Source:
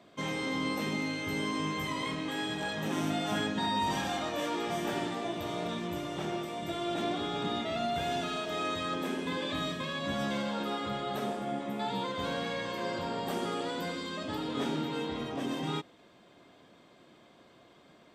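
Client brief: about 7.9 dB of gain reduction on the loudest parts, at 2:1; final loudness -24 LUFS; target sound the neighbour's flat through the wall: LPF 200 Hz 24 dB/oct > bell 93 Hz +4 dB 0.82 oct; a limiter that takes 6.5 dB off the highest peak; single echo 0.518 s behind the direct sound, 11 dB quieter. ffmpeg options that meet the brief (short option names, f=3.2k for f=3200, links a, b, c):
-af "acompressor=threshold=-43dB:ratio=2,alimiter=level_in=11dB:limit=-24dB:level=0:latency=1,volume=-11dB,lowpass=f=200:w=0.5412,lowpass=f=200:w=1.3066,equalizer=f=93:t=o:w=0.82:g=4,aecho=1:1:518:0.282,volume=29dB"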